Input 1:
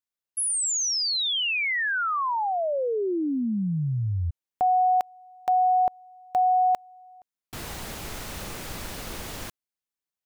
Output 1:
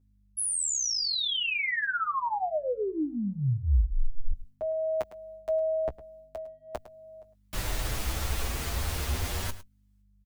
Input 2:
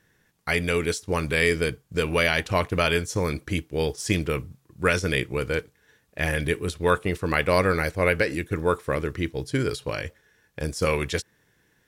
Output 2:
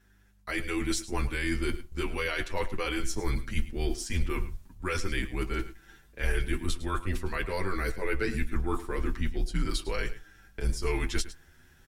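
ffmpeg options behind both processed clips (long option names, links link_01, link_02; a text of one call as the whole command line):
ffmpeg -i in.wav -filter_complex "[0:a]agate=range=-7dB:threshold=-59dB:ratio=16:release=341:detection=rms,afreqshift=-100,areverse,acompressor=threshold=-33dB:ratio=6:attack=14:release=144:knee=6:detection=rms,areverse,asubboost=boost=2:cutoff=120,aeval=exprs='val(0)+0.000447*(sin(2*PI*50*n/s)+sin(2*PI*2*50*n/s)/2+sin(2*PI*3*50*n/s)/3+sin(2*PI*4*50*n/s)/4+sin(2*PI*5*50*n/s)/5)':channel_layout=same,asplit=2[link_01][link_02];[link_02]adelay=16,volume=-13.5dB[link_03];[link_01][link_03]amix=inputs=2:normalize=0,aecho=1:1:106:0.168,asplit=2[link_04][link_05];[link_05]adelay=7.8,afreqshift=0.41[link_06];[link_04][link_06]amix=inputs=2:normalize=1,volume=7dB" out.wav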